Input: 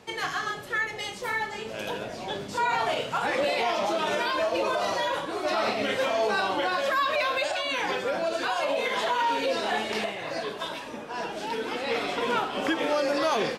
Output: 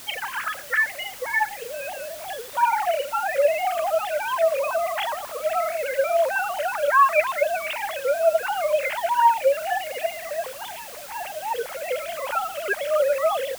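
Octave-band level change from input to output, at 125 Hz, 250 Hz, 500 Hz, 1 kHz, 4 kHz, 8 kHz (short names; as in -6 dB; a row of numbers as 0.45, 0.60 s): under -10 dB, under -15 dB, +5.0 dB, +4.5 dB, -4.0 dB, +5.0 dB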